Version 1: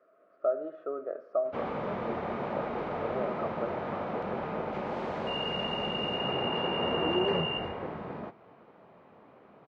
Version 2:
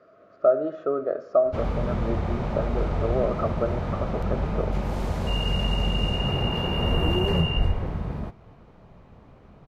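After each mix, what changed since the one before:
speech +9.0 dB
master: remove band-pass filter 300–2,700 Hz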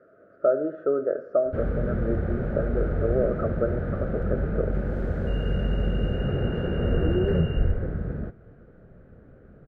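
master: add drawn EQ curve 200 Hz 0 dB, 520 Hz +3 dB, 1,000 Hz −18 dB, 1,500 Hz +5 dB, 2,300 Hz −13 dB, 5,500 Hz −21 dB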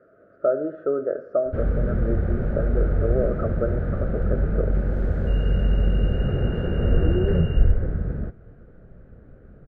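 master: add low-shelf EQ 72 Hz +9 dB

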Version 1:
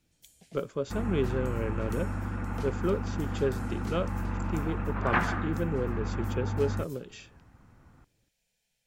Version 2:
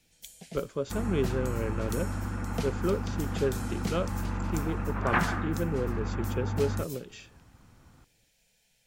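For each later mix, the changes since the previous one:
first sound +9.5 dB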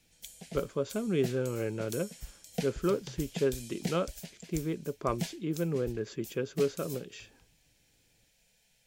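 second sound: muted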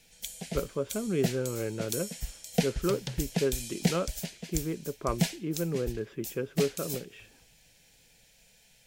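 speech: add Savitzky-Golay smoothing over 25 samples
background +8.0 dB

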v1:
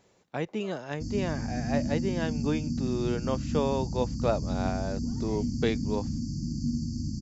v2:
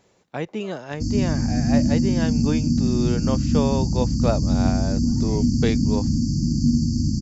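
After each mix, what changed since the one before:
speech +3.5 dB
background +11.0 dB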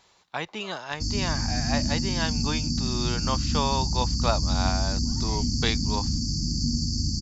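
master: add octave-band graphic EQ 125/250/500/1,000/4,000 Hz −7/−8/−8/+7/+9 dB

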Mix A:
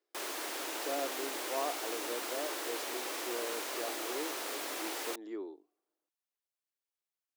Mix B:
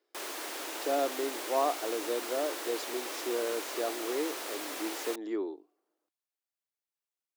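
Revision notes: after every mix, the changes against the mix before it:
speech +7.5 dB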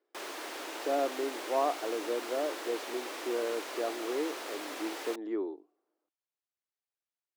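speech: add low-pass filter 2,100 Hz 6 dB per octave
master: add high-shelf EQ 6,700 Hz −10 dB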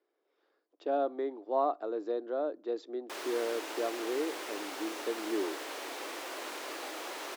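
background: entry +2.95 s

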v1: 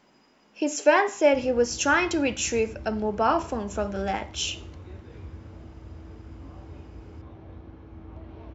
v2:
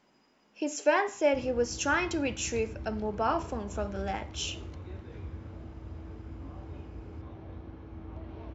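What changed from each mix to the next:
speech −6.0 dB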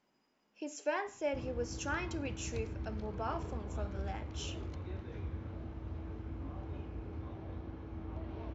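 speech −10.0 dB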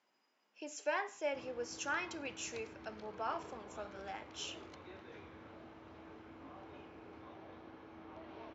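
master: add meter weighting curve A

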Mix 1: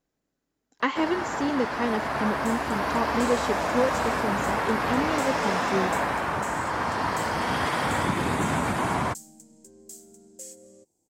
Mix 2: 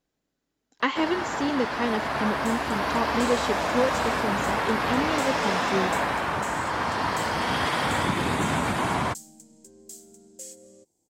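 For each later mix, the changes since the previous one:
master: add parametric band 3,500 Hz +4.5 dB 1.1 octaves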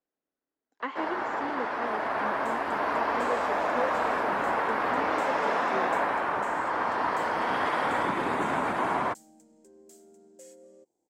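speech −7.5 dB
master: add three-way crossover with the lows and the highs turned down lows −16 dB, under 260 Hz, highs −14 dB, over 2,100 Hz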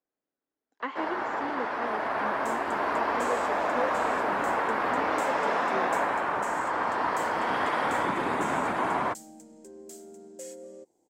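second sound +8.5 dB

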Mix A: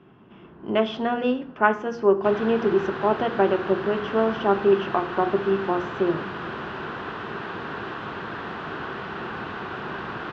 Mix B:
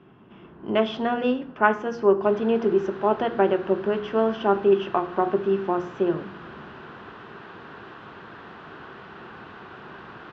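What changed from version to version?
background −9.5 dB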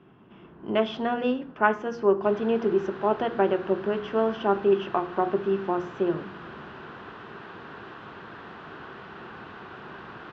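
speech: send −8.0 dB

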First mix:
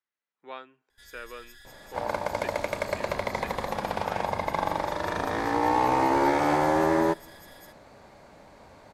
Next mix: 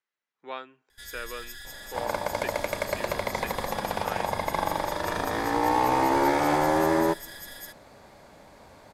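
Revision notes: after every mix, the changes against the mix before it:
speech +3.5 dB
first sound +8.0 dB
master: add high-shelf EQ 5,900 Hz +4.5 dB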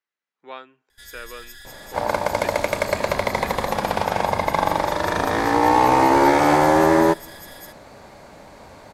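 second sound +7.5 dB

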